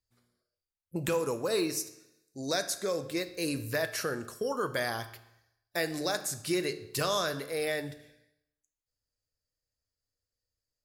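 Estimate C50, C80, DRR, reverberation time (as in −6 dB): 13.0 dB, 15.5 dB, 9.5 dB, 0.80 s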